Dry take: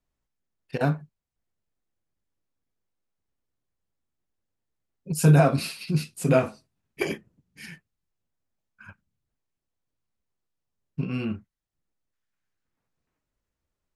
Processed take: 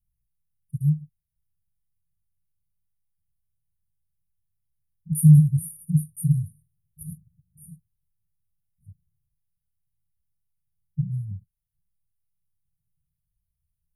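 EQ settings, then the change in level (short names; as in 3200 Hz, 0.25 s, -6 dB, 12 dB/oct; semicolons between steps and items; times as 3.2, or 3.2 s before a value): brick-wall FIR band-stop 180–8900 Hz; +5.5 dB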